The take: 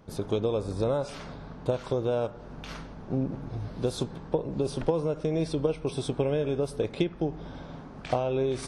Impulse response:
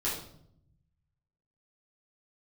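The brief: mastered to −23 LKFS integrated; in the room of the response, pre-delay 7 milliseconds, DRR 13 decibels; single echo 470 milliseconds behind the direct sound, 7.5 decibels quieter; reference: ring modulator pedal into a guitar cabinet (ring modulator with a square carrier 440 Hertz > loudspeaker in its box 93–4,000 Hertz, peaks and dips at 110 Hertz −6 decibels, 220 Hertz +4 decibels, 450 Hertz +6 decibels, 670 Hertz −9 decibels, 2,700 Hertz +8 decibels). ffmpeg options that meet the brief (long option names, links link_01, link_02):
-filter_complex "[0:a]aecho=1:1:470:0.422,asplit=2[link_01][link_02];[1:a]atrim=start_sample=2205,adelay=7[link_03];[link_02][link_03]afir=irnorm=-1:irlink=0,volume=-19.5dB[link_04];[link_01][link_04]amix=inputs=2:normalize=0,aeval=exprs='val(0)*sgn(sin(2*PI*440*n/s))':channel_layout=same,highpass=93,equalizer=frequency=110:width_type=q:width=4:gain=-6,equalizer=frequency=220:width_type=q:width=4:gain=4,equalizer=frequency=450:width_type=q:width=4:gain=6,equalizer=frequency=670:width_type=q:width=4:gain=-9,equalizer=frequency=2700:width_type=q:width=4:gain=8,lowpass=frequency=4000:width=0.5412,lowpass=frequency=4000:width=1.3066,volume=6.5dB"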